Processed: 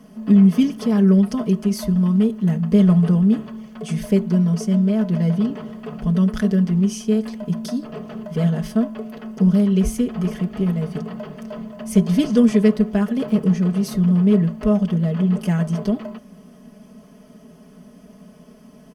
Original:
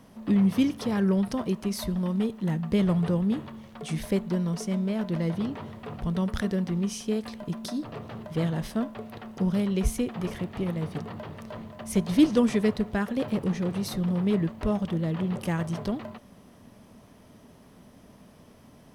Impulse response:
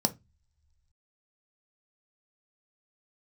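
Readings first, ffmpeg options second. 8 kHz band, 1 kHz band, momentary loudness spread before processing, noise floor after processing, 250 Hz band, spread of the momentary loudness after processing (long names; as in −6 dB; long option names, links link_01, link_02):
+4.0 dB, +2.0 dB, 12 LU, −46 dBFS, +9.5 dB, 13 LU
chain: -filter_complex "[0:a]aecho=1:1:4.7:0.77,asplit=2[link_01][link_02];[1:a]atrim=start_sample=2205,asetrate=35280,aresample=44100[link_03];[link_02][link_03]afir=irnorm=-1:irlink=0,volume=-18dB[link_04];[link_01][link_04]amix=inputs=2:normalize=0"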